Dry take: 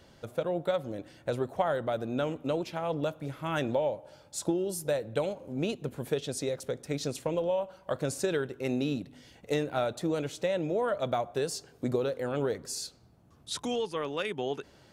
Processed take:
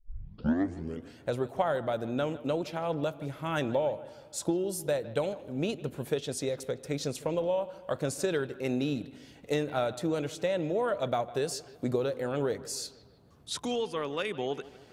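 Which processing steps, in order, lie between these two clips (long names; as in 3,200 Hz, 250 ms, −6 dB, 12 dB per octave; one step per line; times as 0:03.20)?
turntable start at the beginning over 1.18 s
bucket-brigade delay 156 ms, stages 4,096, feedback 52%, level −18 dB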